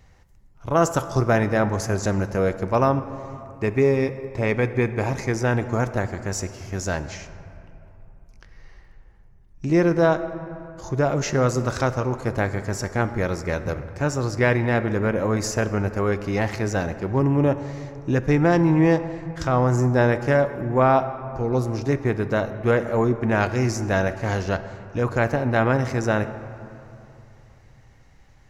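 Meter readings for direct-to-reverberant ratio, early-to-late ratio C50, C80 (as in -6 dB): 10.5 dB, 12.0 dB, 12.5 dB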